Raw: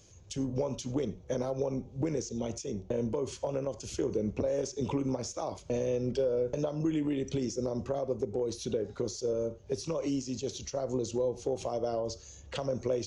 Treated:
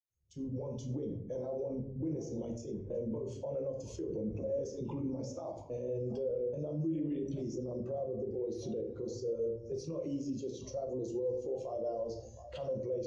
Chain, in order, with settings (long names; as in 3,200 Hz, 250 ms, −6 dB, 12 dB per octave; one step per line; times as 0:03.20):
fade in at the beginning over 0.65 s
on a send: echo through a band-pass that steps 719 ms, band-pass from 830 Hz, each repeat 1.4 octaves, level −10 dB
on the sum: rectangular room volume 240 cubic metres, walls mixed, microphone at 0.83 metres
brickwall limiter −27 dBFS, peak gain reduction 11.5 dB
every bin expanded away from the loudest bin 1.5 to 1